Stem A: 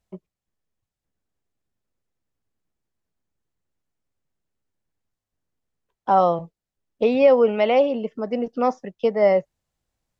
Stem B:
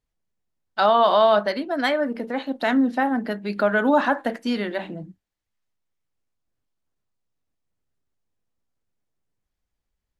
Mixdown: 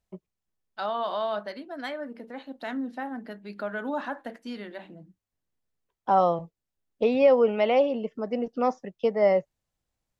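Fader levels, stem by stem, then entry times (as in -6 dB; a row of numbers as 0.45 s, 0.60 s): -4.0 dB, -12.5 dB; 0.00 s, 0.00 s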